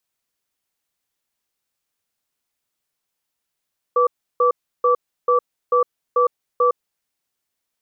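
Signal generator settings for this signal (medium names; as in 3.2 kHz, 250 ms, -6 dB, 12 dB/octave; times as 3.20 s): cadence 491 Hz, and 1.16 kHz, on 0.11 s, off 0.33 s, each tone -15.5 dBFS 2.99 s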